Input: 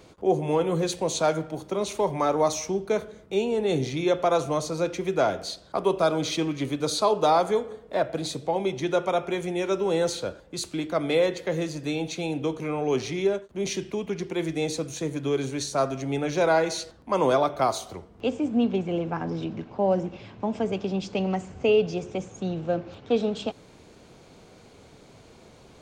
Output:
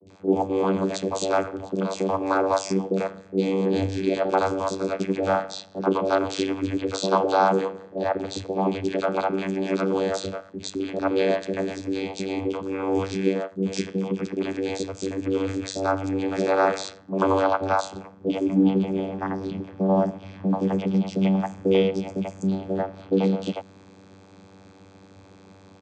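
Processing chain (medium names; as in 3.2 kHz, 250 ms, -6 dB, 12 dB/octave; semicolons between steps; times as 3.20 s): tilt shelf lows -5 dB, about 740 Hz; vocoder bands 16, saw 96.1 Hz; three bands offset in time lows, highs, mids 60/90 ms, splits 520/2800 Hz; trim +5.5 dB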